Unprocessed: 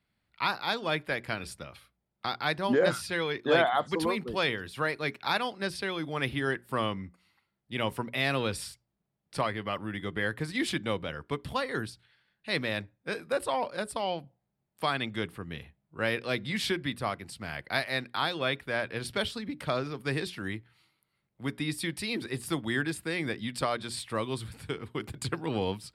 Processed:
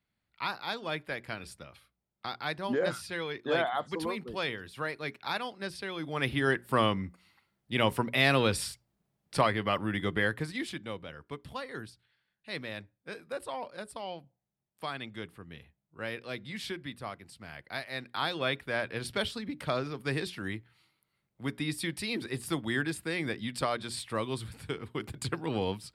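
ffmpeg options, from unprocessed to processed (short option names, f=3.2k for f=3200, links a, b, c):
-af "volume=11dB,afade=t=in:st=5.89:d=0.76:silence=0.354813,afade=t=out:st=10.09:d=0.58:silence=0.251189,afade=t=in:st=17.89:d=0.44:silence=0.446684"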